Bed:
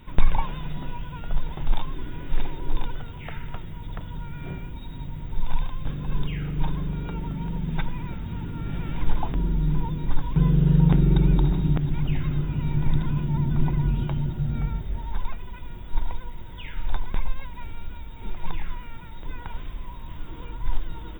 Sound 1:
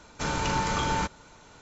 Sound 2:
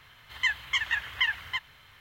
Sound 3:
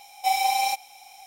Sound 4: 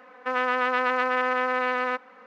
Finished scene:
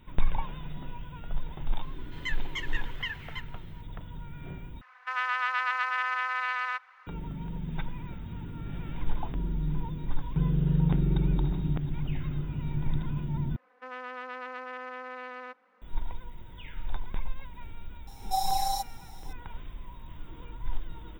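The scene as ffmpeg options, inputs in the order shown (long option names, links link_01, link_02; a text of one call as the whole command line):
ffmpeg -i bed.wav -i cue0.wav -i cue1.wav -i cue2.wav -i cue3.wav -filter_complex "[4:a]asplit=2[link_01][link_02];[0:a]volume=-7dB[link_03];[link_01]highpass=frequency=1000:width=0.5412,highpass=frequency=1000:width=1.3066[link_04];[3:a]asuperstop=centerf=2400:order=12:qfactor=1.4[link_05];[link_03]asplit=3[link_06][link_07][link_08];[link_06]atrim=end=4.814[link_09];[link_04]atrim=end=2.26,asetpts=PTS-STARTPTS,volume=-2.5dB[link_10];[link_07]atrim=start=7.066:end=13.564[link_11];[link_02]atrim=end=2.26,asetpts=PTS-STARTPTS,volume=-15.5dB[link_12];[link_08]atrim=start=15.816[link_13];[2:a]atrim=end=2,asetpts=PTS-STARTPTS,volume=-9dB,afade=type=in:duration=0.004:curve=hsin,afade=type=out:start_time=1.996:duration=0.004:curve=hsin,adelay=1820[link_14];[link_05]atrim=end=1.26,asetpts=PTS-STARTPTS,volume=-5.5dB,afade=type=in:duration=0.004:curve=hsin,afade=type=out:start_time=1.256:duration=0.004:curve=hsin,adelay=18070[link_15];[link_09][link_10]acrossfade=duration=0.004:curve1=hsin:curve2=hsin[link_16];[link_16][link_11]acrossfade=duration=0.004:curve1=hsin:curve2=hsin[link_17];[link_17][link_12]acrossfade=duration=0.004:curve1=hsin:curve2=hsin[link_18];[link_18][link_13]acrossfade=duration=0.004:curve1=hsin:curve2=hsin[link_19];[link_19][link_14][link_15]amix=inputs=3:normalize=0" out.wav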